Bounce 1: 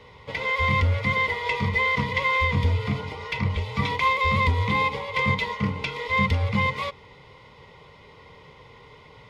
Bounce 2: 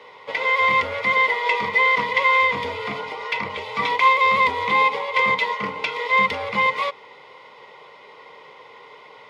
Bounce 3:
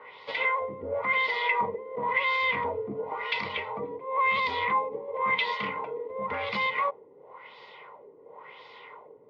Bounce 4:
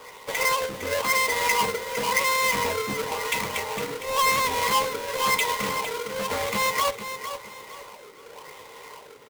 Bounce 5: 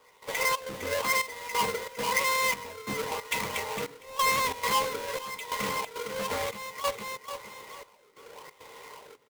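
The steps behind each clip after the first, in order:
high-pass 480 Hz 12 dB/octave; treble shelf 3.5 kHz -8 dB; trim +7.5 dB
peak limiter -15.5 dBFS, peak gain reduction 10 dB; LFO low-pass sine 0.95 Hz 350–4600 Hz; trim -5.5 dB
square wave that keeps the level; feedback delay 458 ms, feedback 32%, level -10 dB
trance gate "..xxx.xxxxx." 136 bpm -12 dB; trim -3.5 dB

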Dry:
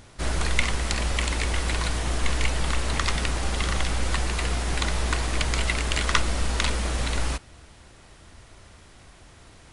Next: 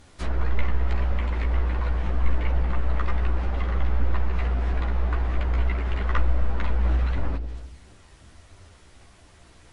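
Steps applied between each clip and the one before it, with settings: low-pass that closes with the level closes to 1.5 kHz, closed at -21 dBFS; feedback echo behind a low-pass 84 ms, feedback 61%, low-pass 570 Hz, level -10 dB; chorus voices 4, 1.5 Hz, delay 13 ms, depth 3 ms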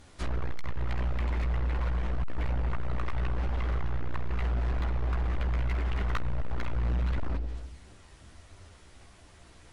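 hard clipper -23 dBFS, distortion -8 dB; trim -2 dB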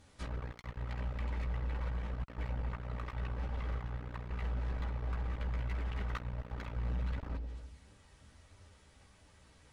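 comb of notches 350 Hz; trim -6 dB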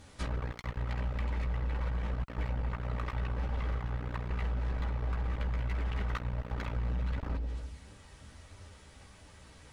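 compression 3:1, threshold -38 dBFS, peak gain reduction 5.5 dB; trim +7.5 dB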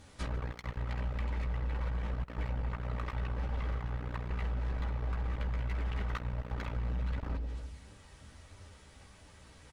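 delay 147 ms -23 dB; trim -1.5 dB

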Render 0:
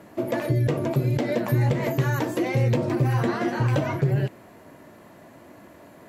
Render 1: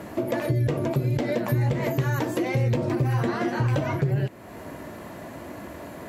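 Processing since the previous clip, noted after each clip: compression 2:1, threshold -40 dBFS, peak gain reduction 12.5 dB; peaking EQ 63 Hz +9 dB 0.69 oct; trim +9 dB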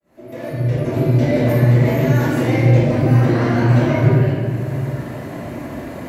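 fade-in on the opening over 1.10 s; reverberation RT60 2.1 s, pre-delay 4 ms, DRR -15.5 dB; trim -11.5 dB

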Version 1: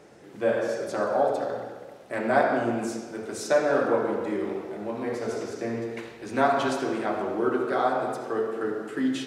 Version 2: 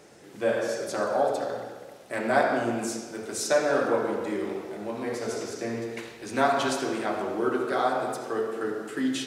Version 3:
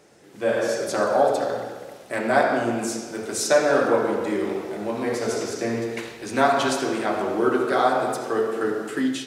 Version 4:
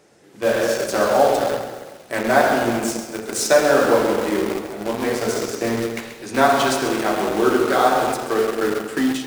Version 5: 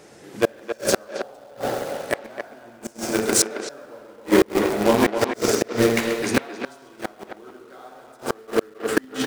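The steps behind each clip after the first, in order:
treble shelf 3.2 kHz +9 dB; trim -1.5 dB
level rider gain up to 8.5 dB; trim -2.5 dB
in parallel at -6.5 dB: bit crusher 4-bit; on the sum: bit-crushed delay 134 ms, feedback 55%, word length 6-bit, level -11 dB
inverted gate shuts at -12 dBFS, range -34 dB; speakerphone echo 270 ms, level -7 dB; trim +7 dB

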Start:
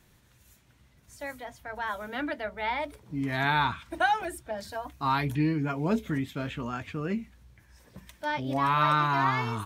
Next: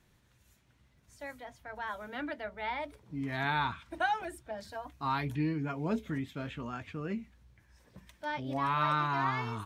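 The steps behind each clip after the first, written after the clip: treble shelf 9.3 kHz -7.5 dB; trim -5.5 dB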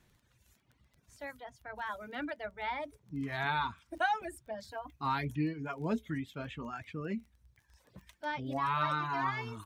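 reverb removal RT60 1.2 s; crackle 14 per s -49 dBFS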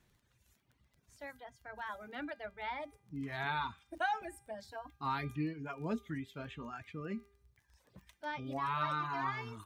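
feedback comb 400 Hz, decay 0.64 s, mix 60%; trim +4 dB

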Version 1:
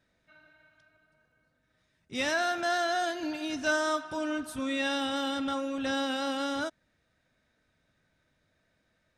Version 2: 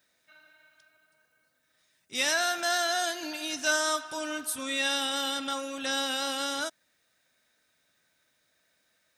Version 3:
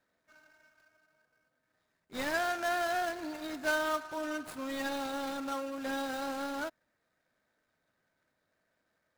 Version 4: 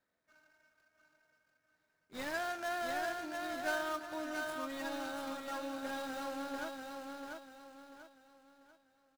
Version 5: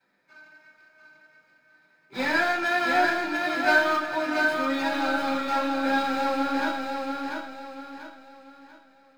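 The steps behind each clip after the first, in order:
RIAA curve recording
median filter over 15 samples; trim -1 dB
feedback delay 691 ms, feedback 36%, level -4 dB; trim -6 dB
reverberation RT60 0.50 s, pre-delay 3 ms, DRR -13 dB; trim -1.5 dB

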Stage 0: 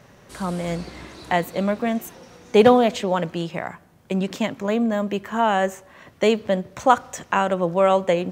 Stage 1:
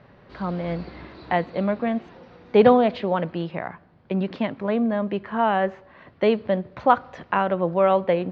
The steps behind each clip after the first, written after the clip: elliptic low-pass 4.6 kHz, stop band 80 dB; treble shelf 3.2 kHz -11 dB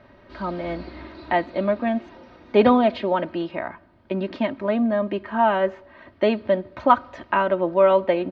comb 3.2 ms, depth 66%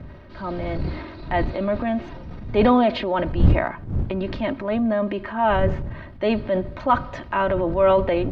wind noise 110 Hz -27 dBFS; transient shaper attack -5 dB, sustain +6 dB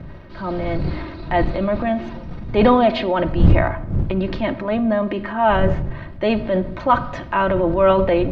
simulated room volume 2400 m³, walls furnished, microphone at 0.76 m; trim +3 dB

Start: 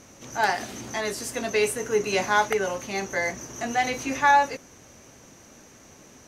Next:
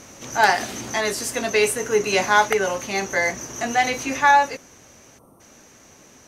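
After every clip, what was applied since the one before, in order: bass shelf 470 Hz -3.5 dB; gain riding within 3 dB 2 s; time-frequency box 5.18–5.41 s, 1.4–8.3 kHz -23 dB; trim +5 dB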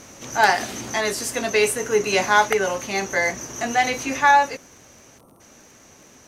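crackle 32 per s -41 dBFS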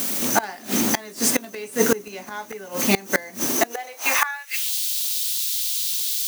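added noise blue -33 dBFS; high-pass sweep 210 Hz -> 3.7 kHz, 3.44–4.74 s; inverted gate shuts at -12 dBFS, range -25 dB; trim +7.5 dB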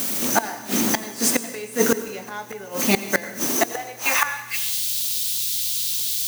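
mains buzz 120 Hz, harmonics 5, -55 dBFS -5 dB/octave; plate-style reverb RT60 1 s, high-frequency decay 0.95×, pre-delay 75 ms, DRR 12.5 dB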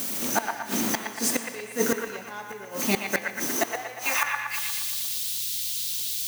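feedback echo behind a band-pass 118 ms, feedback 57%, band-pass 1.5 kHz, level -3.5 dB; trim -5.5 dB

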